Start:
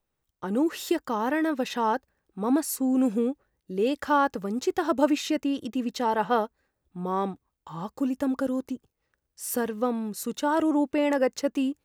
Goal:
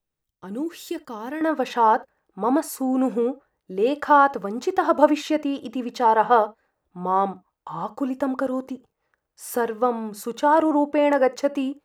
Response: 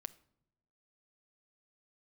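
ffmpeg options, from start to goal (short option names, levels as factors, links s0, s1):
-filter_complex "[0:a]asetnsamples=n=441:p=0,asendcmd='1.41 equalizer g 12',equalizer=f=900:w=0.51:g=-4[s0];[1:a]atrim=start_sample=2205,afade=t=out:st=0.13:d=0.01,atrim=end_sample=6174[s1];[s0][s1]afir=irnorm=-1:irlink=0,volume=1.12"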